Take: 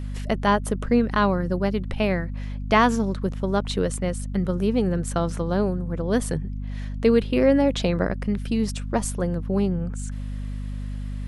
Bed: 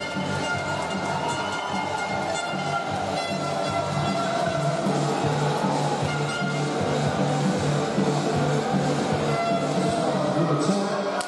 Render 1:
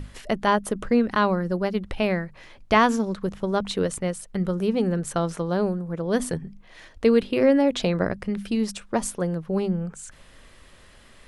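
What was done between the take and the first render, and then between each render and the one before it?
notches 50/100/150/200/250 Hz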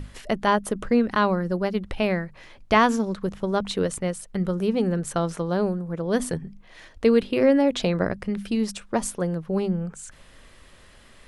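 nothing audible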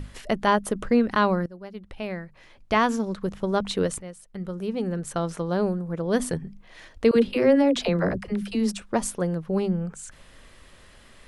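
1.46–3.51 fade in, from -20 dB; 4.02–5.74 fade in, from -13.5 dB; 7.11–8.82 dispersion lows, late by 55 ms, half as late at 400 Hz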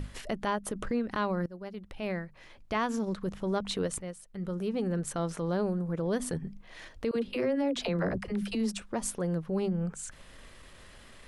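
compressor 8:1, threshold -25 dBFS, peak gain reduction 12 dB; transient shaper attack -6 dB, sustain -2 dB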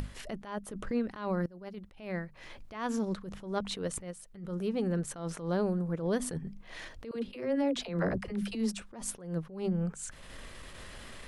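upward compressor, threshold -38 dBFS; attack slew limiter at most 110 dB/s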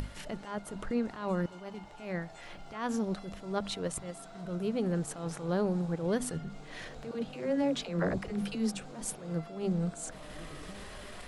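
add bed -25.5 dB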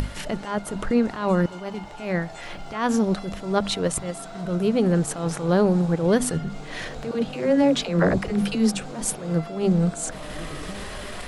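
gain +11 dB

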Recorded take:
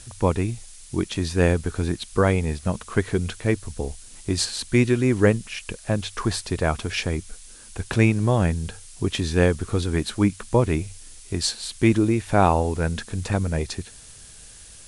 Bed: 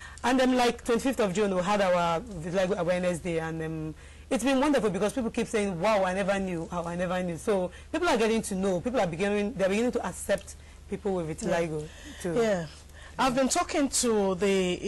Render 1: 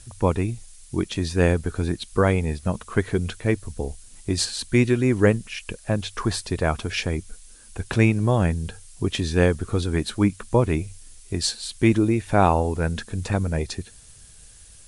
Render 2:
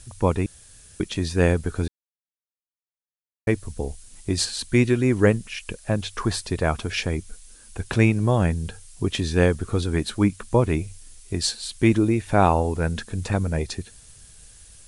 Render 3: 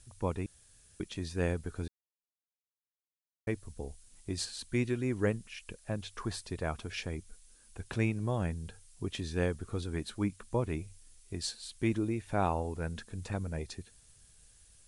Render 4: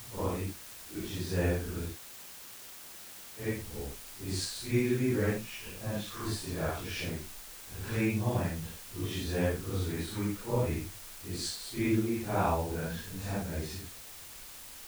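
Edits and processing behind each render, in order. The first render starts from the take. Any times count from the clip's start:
denoiser 6 dB, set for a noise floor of -45 dBFS
0.46–1 room tone; 1.88–3.47 mute
gain -12.5 dB
phase scrambler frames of 0.2 s; in parallel at -12 dB: requantised 6-bit, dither triangular

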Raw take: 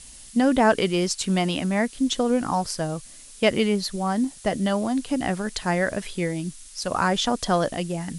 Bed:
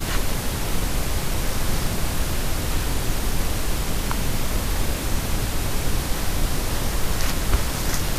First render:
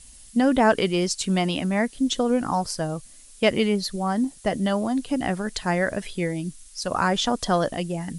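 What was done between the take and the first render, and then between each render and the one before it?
denoiser 6 dB, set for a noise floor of -45 dBFS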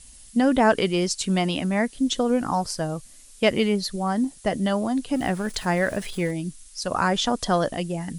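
2.18–3.73 careless resampling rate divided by 2×, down none, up filtered; 5.14–6.31 zero-crossing step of -38.5 dBFS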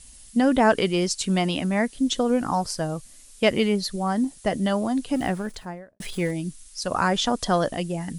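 5.17–6 studio fade out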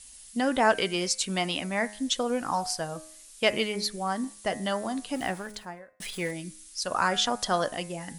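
low shelf 450 Hz -11.5 dB; de-hum 104.6 Hz, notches 25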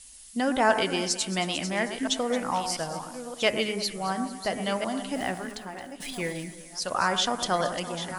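reverse delay 0.692 s, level -11 dB; on a send: echo with dull and thin repeats by turns 0.111 s, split 1600 Hz, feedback 64%, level -10 dB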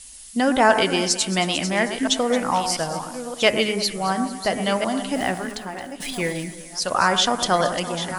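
gain +6.5 dB; limiter -3 dBFS, peak gain reduction 1 dB

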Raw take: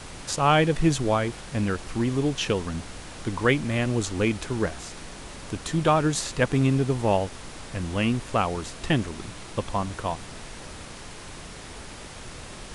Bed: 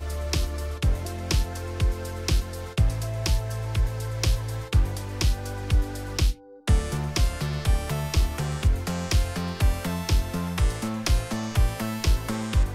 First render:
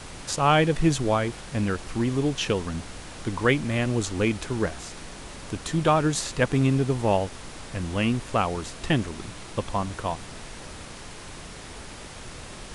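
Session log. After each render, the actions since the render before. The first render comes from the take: nothing audible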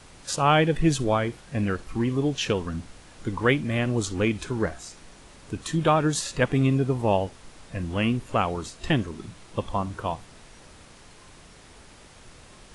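noise print and reduce 9 dB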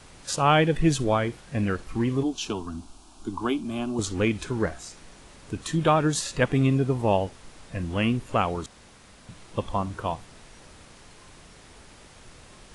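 2.23–3.99 fixed phaser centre 510 Hz, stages 6; 8.66–9.29 room tone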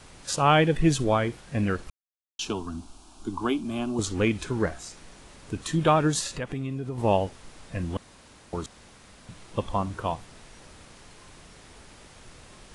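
1.9–2.39 mute; 6.27–6.98 compressor 3:1, threshold -31 dBFS; 7.97–8.53 room tone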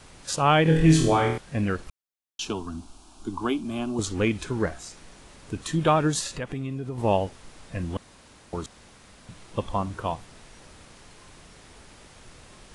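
0.63–1.38 flutter echo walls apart 4.3 m, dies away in 0.59 s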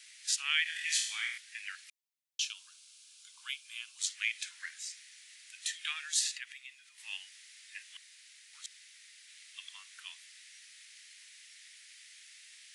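elliptic high-pass 1900 Hz, stop band 80 dB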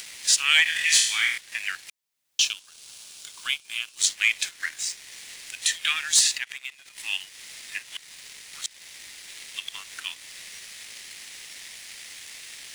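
in parallel at -1.5 dB: upward compressor, threshold -38 dBFS; on the sum: sample leveller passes 2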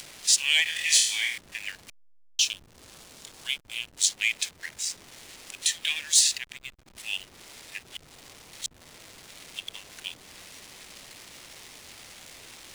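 fixed phaser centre 540 Hz, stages 4; backlash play -37 dBFS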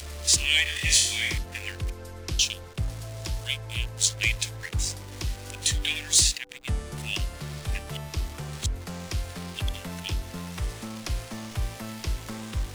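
add bed -8 dB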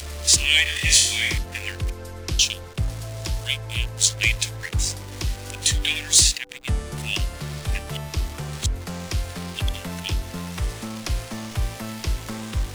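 gain +4.5 dB

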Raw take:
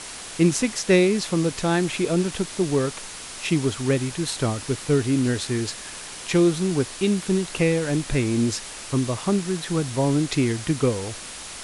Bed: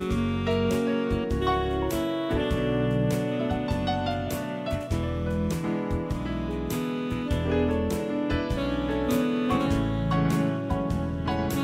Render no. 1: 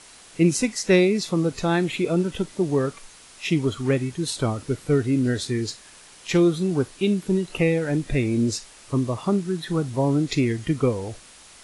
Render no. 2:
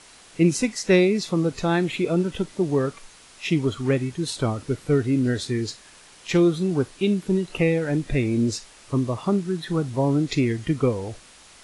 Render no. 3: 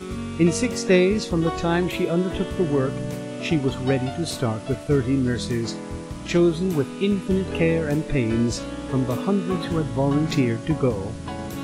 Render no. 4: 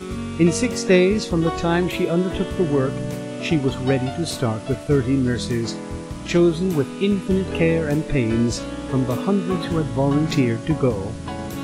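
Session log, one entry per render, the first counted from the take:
noise print and reduce 11 dB
high shelf 9000 Hz -6.5 dB
add bed -4.5 dB
gain +2 dB

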